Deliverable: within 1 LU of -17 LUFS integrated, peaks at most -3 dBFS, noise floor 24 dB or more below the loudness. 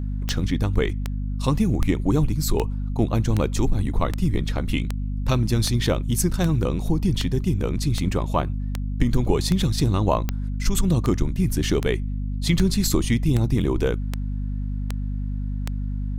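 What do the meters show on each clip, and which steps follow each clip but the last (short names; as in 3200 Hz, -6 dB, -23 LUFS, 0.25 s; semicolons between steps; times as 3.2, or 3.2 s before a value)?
clicks 21; hum 50 Hz; harmonics up to 250 Hz; hum level -24 dBFS; loudness -24.0 LUFS; peak -5.0 dBFS; loudness target -17.0 LUFS
-> de-click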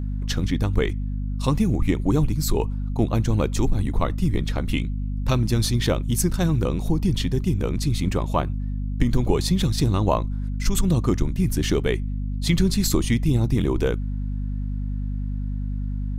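clicks 0; hum 50 Hz; harmonics up to 250 Hz; hum level -24 dBFS
-> notches 50/100/150/200/250 Hz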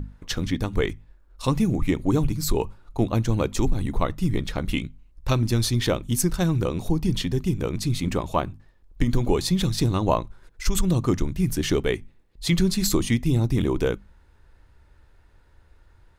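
hum none; loudness -25.0 LUFS; peak -7.5 dBFS; loudness target -17.0 LUFS
-> gain +8 dB; limiter -3 dBFS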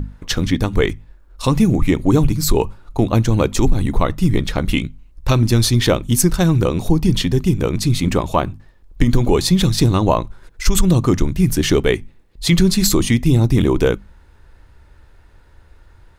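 loudness -17.0 LUFS; peak -3.0 dBFS; noise floor -48 dBFS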